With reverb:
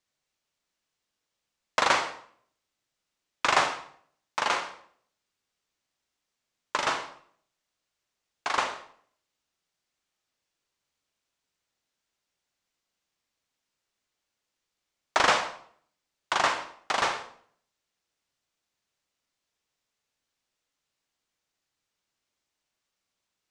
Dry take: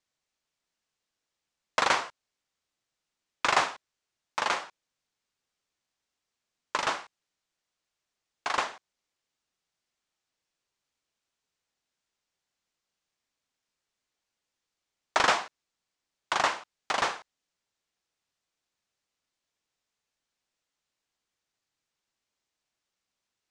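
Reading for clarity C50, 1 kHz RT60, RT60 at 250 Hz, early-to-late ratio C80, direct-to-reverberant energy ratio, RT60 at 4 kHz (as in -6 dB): 9.0 dB, 0.55 s, 0.65 s, 13.0 dB, 7.0 dB, 0.45 s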